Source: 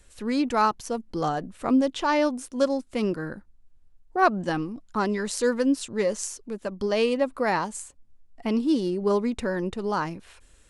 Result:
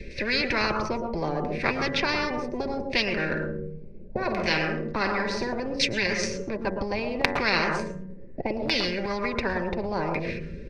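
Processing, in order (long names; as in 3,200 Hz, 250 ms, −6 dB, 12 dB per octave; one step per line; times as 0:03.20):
mu-law and A-law mismatch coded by A
drawn EQ curve 520 Hz 0 dB, 740 Hz −19 dB, 1,200 Hz −19 dB, 2,300 Hz −1 dB, 3,500 Hz −5 dB, 5,600 Hz 0 dB, 12,000 Hz −12 dB
auto-filter low-pass saw down 0.69 Hz 580–2,200 Hz
high-shelf EQ 8,200 Hz +7.5 dB
comb filter 5.1 ms, depth 40%
hum removal 93.69 Hz, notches 22
convolution reverb RT60 0.30 s, pre-delay 109 ms, DRR 12 dB
brickwall limiter −10.5 dBFS, peak gain reduction 9 dB
0:03.30–0:05.53: flutter between parallel walls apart 8.8 metres, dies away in 0.32 s
every bin compressed towards the loudest bin 10 to 1
level +6.5 dB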